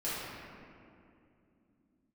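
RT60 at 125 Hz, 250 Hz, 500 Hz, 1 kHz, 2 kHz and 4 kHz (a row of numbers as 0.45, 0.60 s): 3.5, 4.4, 2.9, 2.2, 2.0, 1.4 s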